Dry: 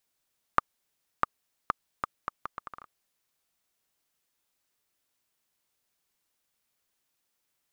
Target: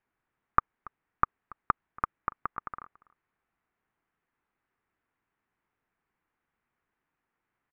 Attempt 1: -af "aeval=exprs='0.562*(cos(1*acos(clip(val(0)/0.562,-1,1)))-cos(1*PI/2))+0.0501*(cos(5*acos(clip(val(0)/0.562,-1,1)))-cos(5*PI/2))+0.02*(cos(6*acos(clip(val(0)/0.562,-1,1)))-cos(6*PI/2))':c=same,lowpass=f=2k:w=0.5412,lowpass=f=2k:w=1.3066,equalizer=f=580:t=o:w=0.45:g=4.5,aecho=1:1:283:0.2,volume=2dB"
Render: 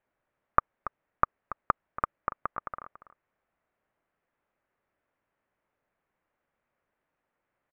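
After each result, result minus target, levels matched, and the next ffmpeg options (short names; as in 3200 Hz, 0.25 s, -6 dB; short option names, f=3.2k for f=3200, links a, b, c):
500 Hz band +6.5 dB; echo-to-direct +8.5 dB
-af "aeval=exprs='0.562*(cos(1*acos(clip(val(0)/0.562,-1,1)))-cos(1*PI/2))+0.0501*(cos(5*acos(clip(val(0)/0.562,-1,1)))-cos(5*PI/2))+0.02*(cos(6*acos(clip(val(0)/0.562,-1,1)))-cos(6*PI/2))':c=same,lowpass=f=2k:w=0.5412,lowpass=f=2k:w=1.3066,equalizer=f=580:t=o:w=0.45:g=-7.5,aecho=1:1:283:0.2,volume=2dB"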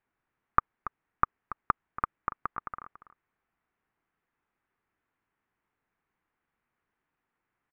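echo-to-direct +8.5 dB
-af "aeval=exprs='0.562*(cos(1*acos(clip(val(0)/0.562,-1,1)))-cos(1*PI/2))+0.0501*(cos(5*acos(clip(val(0)/0.562,-1,1)))-cos(5*PI/2))+0.02*(cos(6*acos(clip(val(0)/0.562,-1,1)))-cos(6*PI/2))':c=same,lowpass=f=2k:w=0.5412,lowpass=f=2k:w=1.3066,equalizer=f=580:t=o:w=0.45:g=-7.5,aecho=1:1:283:0.075,volume=2dB"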